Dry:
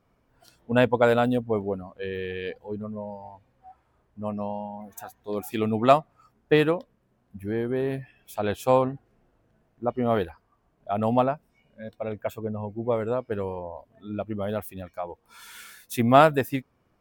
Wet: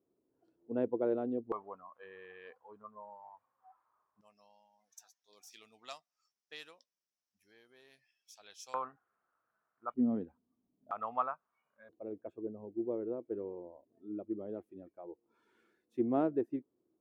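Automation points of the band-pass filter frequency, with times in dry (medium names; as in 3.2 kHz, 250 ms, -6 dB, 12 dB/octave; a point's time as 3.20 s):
band-pass filter, Q 5.4
350 Hz
from 1.52 s 1.1 kHz
from 4.21 s 5.6 kHz
from 8.74 s 1.3 kHz
from 9.94 s 250 Hz
from 10.91 s 1.2 kHz
from 11.89 s 340 Hz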